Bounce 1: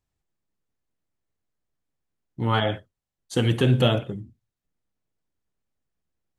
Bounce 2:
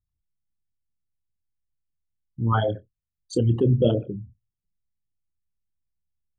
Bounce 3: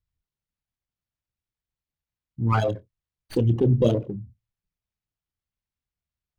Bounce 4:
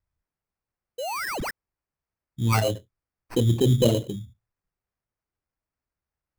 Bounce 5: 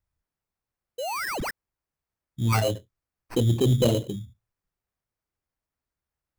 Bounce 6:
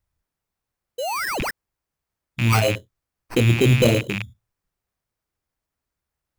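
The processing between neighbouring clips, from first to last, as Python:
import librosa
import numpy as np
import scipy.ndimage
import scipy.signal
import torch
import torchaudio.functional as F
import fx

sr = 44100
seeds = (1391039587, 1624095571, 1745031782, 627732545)

y1 = fx.envelope_sharpen(x, sr, power=3.0)
y1 = fx.doubler(y1, sr, ms=26.0, db=-14.0)
y2 = fx.running_max(y1, sr, window=5)
y3 = fx.spec_paint(y2, sr, seeds[0], shape='rise', start_s=0.98, length_s=0.53, low_hz=470.0, high_hz=5600.0, level_db=-30.0)
y3 = fx.sample_hold(y3, sr, seeds[1], rate_hz=3500.0, jitter_pct=0)
y4 = 10.0 ** (-11.5 / 20.0) * np.tanh(y3 / 10.0 ** (-11.5 / 20.0))
y5 = fx.rattle_buzz(y4, sr, strikes_db=-33.0, level_db=-19.0)
y5 = y5 * librosa.db_to_amplitude(4.5)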